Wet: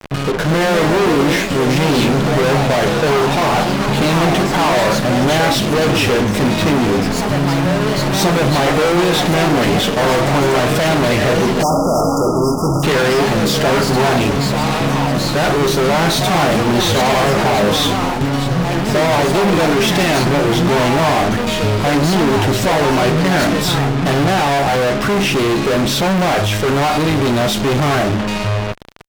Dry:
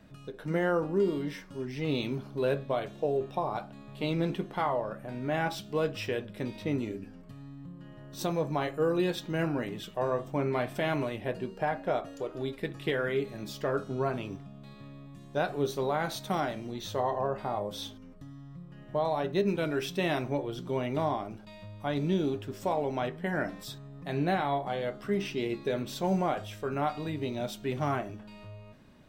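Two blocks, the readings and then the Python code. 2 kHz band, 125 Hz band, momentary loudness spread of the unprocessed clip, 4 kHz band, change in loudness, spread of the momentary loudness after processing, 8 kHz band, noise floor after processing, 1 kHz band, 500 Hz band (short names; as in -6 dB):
+20.0 dB, +19.5 dB, 17 LU, +23.5 dB, +17.5 dB, 3 LU, +26.0 dB, -19 dBFS, +18.0 dB, +16.0 dB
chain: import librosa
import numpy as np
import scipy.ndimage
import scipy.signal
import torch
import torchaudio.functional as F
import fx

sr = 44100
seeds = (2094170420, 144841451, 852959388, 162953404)

y = fx.fuzz(x, sr, gain_db=53.0, gate_db=-50.0)
y = fx.high_shelf(y, sr, hz=7300.0, db=-7.0)
y = fx.echo_pitch(y, sr, ms=279, semitones=3, count=3, db_per_echo=-6.0)
y = fx.spec_erase(y, sr, start_s=11.63, length_s=1.21, low_hz=1400.0, high_hz=4800.0)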